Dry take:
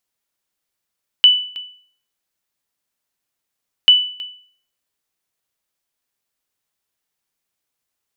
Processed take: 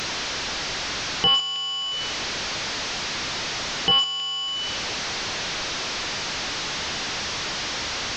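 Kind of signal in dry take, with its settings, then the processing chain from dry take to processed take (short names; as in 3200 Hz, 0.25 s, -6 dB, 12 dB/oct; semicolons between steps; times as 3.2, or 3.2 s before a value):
sonar ping 2980 Hz, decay 0.51 s, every 2.64 s, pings 2, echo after 0.32 s, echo -19.5 dB -2.5 dBFS
delta modulation 32 kbps, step -21.5 dBFS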